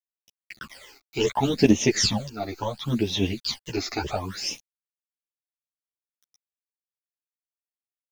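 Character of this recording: a quantiser's noise floor 8-bit, dither none; phasing stages 12, 0.71 Hz, lowest notch 160–1500 Hz; random-step tremolo; a shimmering, thickened sound

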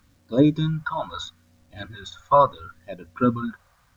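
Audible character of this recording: phasing stages 2, 0.75 Hz, lowest notch 260–1300 Hz; a quantiser's noise floor 12-bit, dither none

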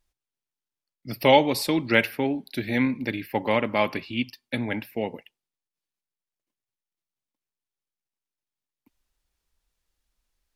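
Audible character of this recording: noise floor -91 dBFS; spectral tilt -3.5 dB/oct

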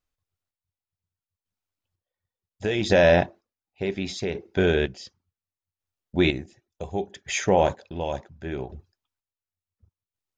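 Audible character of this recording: chopped level 0.69 Hz, depth 60%, duty 35%

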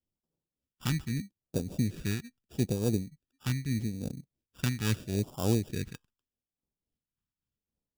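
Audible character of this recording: aliases and images of a low sample rate 2100 Hz, jitter 0%; phasing stages 2, 0.79 Hz, lowest notch 560–1800 Hz; tremolo triangle 3.5 Hz, depth 65%

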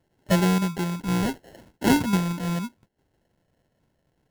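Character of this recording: phasing stages 2, 0.48 Hz, lowest notch 400–1200 Hz; aliases and images of a low sample rate 1200 Hz, jitter 0%; Opus

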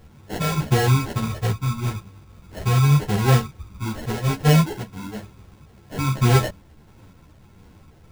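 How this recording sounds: phasing stages 4, 1.6 Hz, lowest notch 390–1200 Hz; aliases and images of a low sample rate 1200 Hz, jitter 0%; a shimmering, thickened sound

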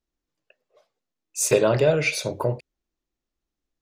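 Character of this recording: noise floor -86 dBFS; spectral tilt -4.0 dB/oct

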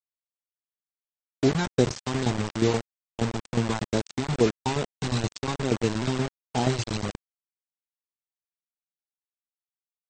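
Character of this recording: tremolo saw down 8.4 Hz, depth 70%; phasing stages 2, 2.3 Hz, lowest notch 480–1300 Hz; a quantiser's noise floor 6-bit, dither none; AAC

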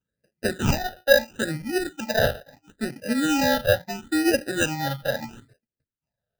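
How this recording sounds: aliases and images of a low sample rate 1100 Hz, jitter 0%; phasing stages 8, 0.75 Hz, lowest notch 300–1100 Hz

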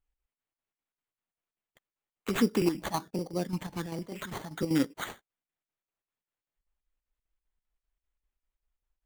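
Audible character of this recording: phasing stages 8, 1.3 Hz, lowest notch 390–2000 Hz; aliases and images of a low sample rate 5200 Hz, jitter 0%; chopped level 5.1 Hz, depth 60%, duty 70%

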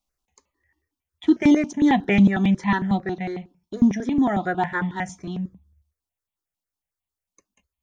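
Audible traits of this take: notches that jump at a steady rate 11 Hz 440–1500 Hz

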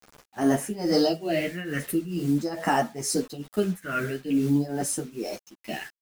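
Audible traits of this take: phasing stages 4, 0.45 Hz, lowest notch 760–4100 Hz; a quantiser's noise floor 8-bit, dither none; tremolo triangle 2.3 Hz, depth 85%; a shimmering, thickened sound

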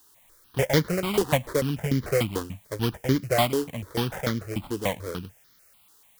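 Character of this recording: aliases and images of a low sample rate 2700 Hz, jitter 20%; tremolo saw down 6.8 Hz, depth 65%; a quantiser's noise floor 10-bit, dither triangular; notches that jump at a steady rate 6.8 Hz 610–2600 Hz

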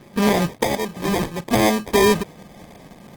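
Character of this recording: phasing stages 2, 0.66 Hz, lowest notch 790–4700 Hz; aliases and images of a low sample rate 1400 Hz, jitter 0%; Opus

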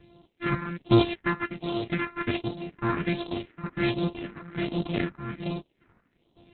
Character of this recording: a buzz of ramps at a fixed pitch in blocks of 128 samples; chopped level 1.1 Hz, depth 65%, duty 60%; phasing stages 4, 1.3 Hz, lowest notch 560–1800 Hz; Opus

